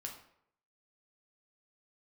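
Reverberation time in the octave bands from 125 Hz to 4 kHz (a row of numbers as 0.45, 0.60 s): 0.70, 0.65, 0.75, 0.70, 0.60, 0.45 s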